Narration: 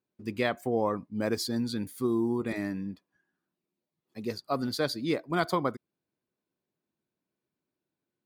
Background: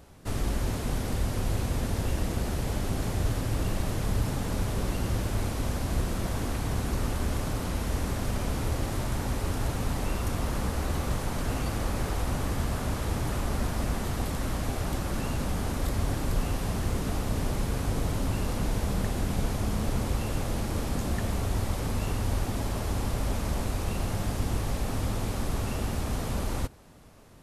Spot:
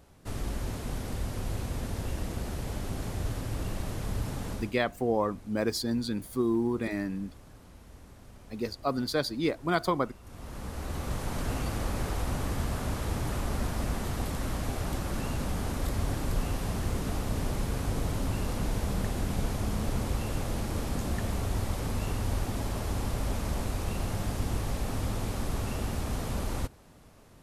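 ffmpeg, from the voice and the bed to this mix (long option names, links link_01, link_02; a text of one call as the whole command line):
ffmpeg -i stem1.wav -i stem2.wav -filter_complex "[0:a]adelay=4350,volume=0.5dB[link_01];[1:a]volume=14.5dB,afade=type=out:start_time=4.5:duration=0.24:silence=0.149624,afade=type=in:start_time=10.23:duration=1.14:silence=0.105925[link_02];[link_01][link_02]amix=inputs=2:normalize=0" out.wav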